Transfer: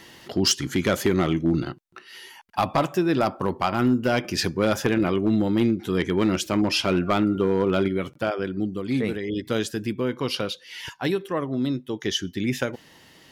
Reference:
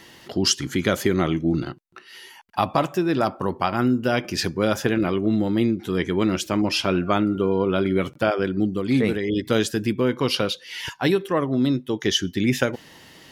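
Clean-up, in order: clip repair -13 dBFS; gain correction +4.5 dB, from 7.88 s

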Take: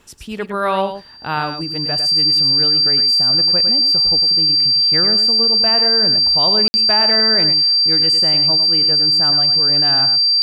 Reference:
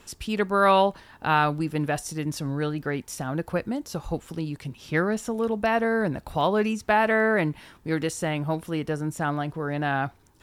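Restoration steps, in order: band-stop 4.7 kHz, Q 30; room tone fill 6.68–6.74 s; inverse comb 104 ms -8.5 dB

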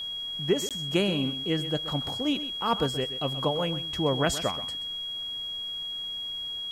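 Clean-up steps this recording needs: band-stop 3.3 kHz, Q 30; interpolate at 0.69 s, 17 ms; expander -27 dBFS, range -21 dB; inverse comb 129 ms -13 dB

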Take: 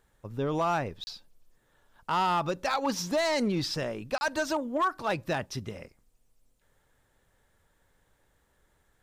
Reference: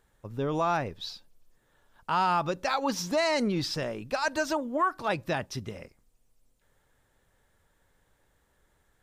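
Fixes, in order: clip repair -21 dBFS; interpolate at 1.04/4.18 s, 30 ms

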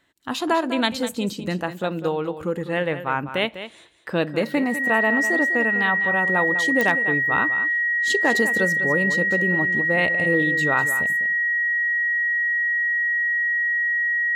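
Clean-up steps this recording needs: clip repair -8 dBFS; de-click; band-stop 1.9 kHz, Q 30; inverse comb 200 ms -11.5 dB

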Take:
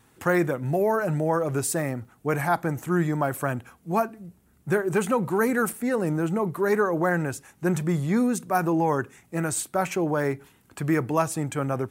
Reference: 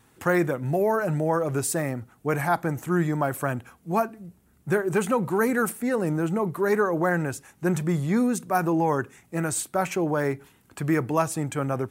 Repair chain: interpolate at 2.05/5.73/9.56 s, 2.9 ms

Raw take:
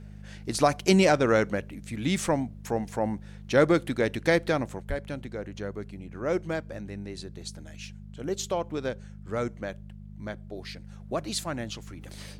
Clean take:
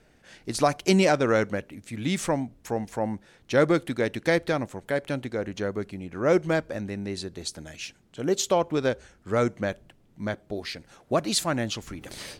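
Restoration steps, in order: de-hum 51 Hz, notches 4; de-plosive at 4.88 s; gain correction +6.5 dB, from 4.82 s

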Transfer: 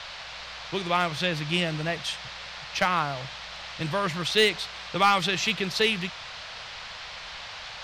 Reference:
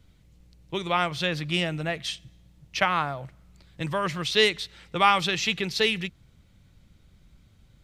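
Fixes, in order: clip repair -12.5 dBFS; noise print and reduce 17 dB

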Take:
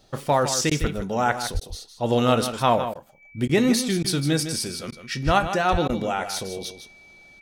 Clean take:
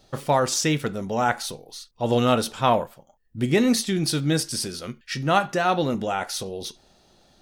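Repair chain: band-stop 2.3 kHz, Q 30; de-plosive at 0.80/1.53/5.25/5.71 s; interpolate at 0.70/1.60/2.94/3.48/4.03/4.91/5.88 s, 11 ms; inverse comb 156 ms -10 dB

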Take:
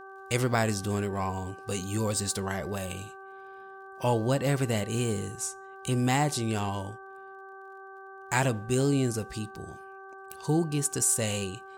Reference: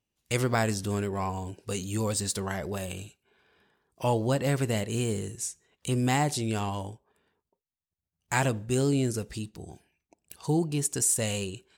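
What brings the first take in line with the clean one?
de-click; de-hum 386.8 Hz, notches 4

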